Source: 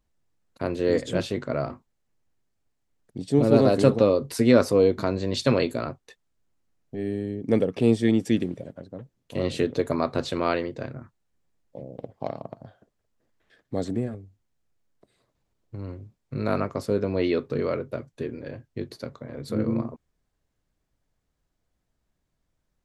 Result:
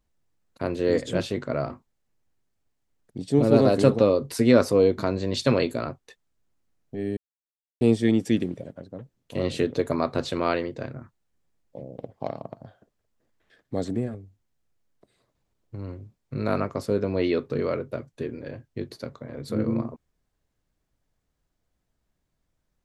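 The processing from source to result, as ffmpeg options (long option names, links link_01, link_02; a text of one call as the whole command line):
ffmpeg -i in.wav -filter_complex "[0:a]asplit=3[link_01][link_02][link_03];[link_01]atrim=end=7.17,asetpts=PTS-STARTPTS,afade=type=out:start_time=7.166:duration=0.004:curve=hsin[link_04];[link_02]atrim=start=7.17:end=7.81,asetpts=PTS-STARTPTS,volume=0[link_05];[link_03]atrim=start=7.81,asetpts=PTS-STARTPTS,afade=type=in:duration=0.004:curve=hsin[link_06];[link_04][link_05][link_06]concat=n=3:v=0:a=1" out.wav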